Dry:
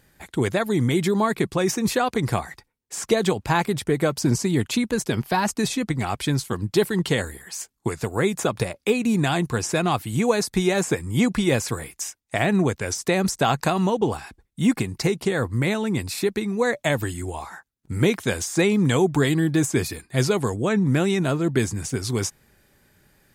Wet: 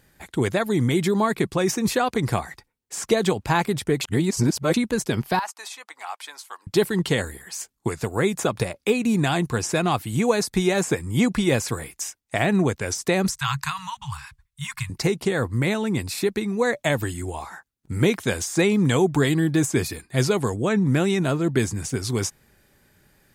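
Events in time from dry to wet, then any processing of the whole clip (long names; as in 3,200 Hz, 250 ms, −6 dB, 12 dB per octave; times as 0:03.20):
0:04.01–0:04.74: reverse
0:05.39–0:06.67: four-pole ladder high-pass 730 Hz, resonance 40%
0:13.28–0:14.90: Chebyshev band-stop filter 140–980 Hz, order 4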